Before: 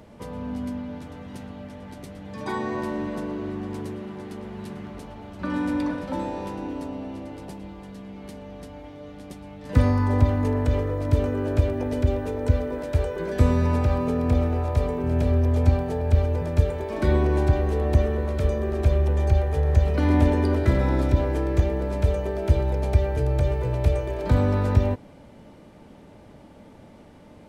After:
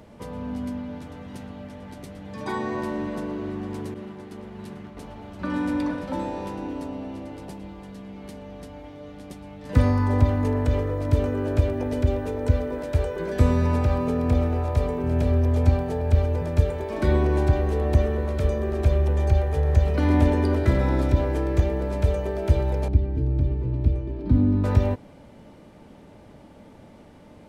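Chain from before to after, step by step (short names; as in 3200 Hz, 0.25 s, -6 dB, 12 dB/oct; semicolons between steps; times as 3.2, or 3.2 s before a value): 3.94–4.97 expander -32 dBFS; 22.88–24.64 EQ curve 170 Hz 0 dB, 290 Hz +8 dB, 490 Hz -14 dB, 940 Hz -13 dB, 1600 Hz -16 dB, 2400 Hz -14 dB, 4600 Hz -13 dB, 6700 Hz -23 dB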